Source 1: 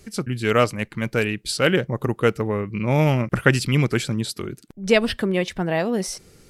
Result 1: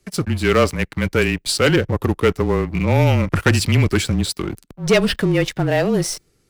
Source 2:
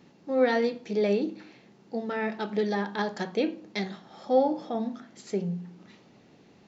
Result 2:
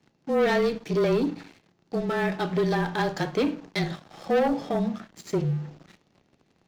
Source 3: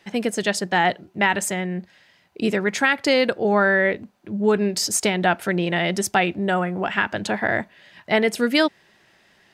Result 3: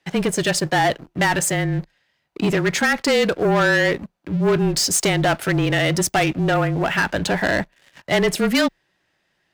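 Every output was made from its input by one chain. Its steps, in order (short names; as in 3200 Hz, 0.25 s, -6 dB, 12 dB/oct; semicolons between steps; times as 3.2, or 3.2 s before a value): sample leveller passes 3; frequency shift -27 Hz; gain -5.5 dB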